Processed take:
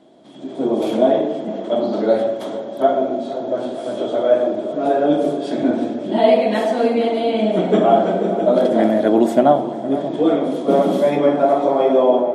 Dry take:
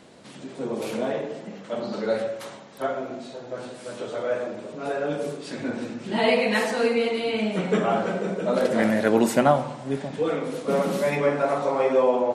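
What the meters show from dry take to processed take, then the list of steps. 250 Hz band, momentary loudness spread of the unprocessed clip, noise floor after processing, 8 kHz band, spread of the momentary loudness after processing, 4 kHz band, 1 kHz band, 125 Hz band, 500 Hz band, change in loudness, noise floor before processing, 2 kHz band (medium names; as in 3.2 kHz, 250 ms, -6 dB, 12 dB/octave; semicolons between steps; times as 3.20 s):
+8.5 dB, 15 LU, -30 dBFS, no reading, 9 LU, +2.0 dB, +7.5 dB, +3.0 dB, +8.0 dB, +7.5 dB, -43 dBFS, -3.0 dB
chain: level rider gain up to 11.5 dB; small resonant body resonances 320/640/3300 Hz, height 17 dB, ringing for 20 ms; on a send: tape echo 466 ms, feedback 84%, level -12.5 dB, low-pass 1.6 kHz; on the sum: trim -12.5 dB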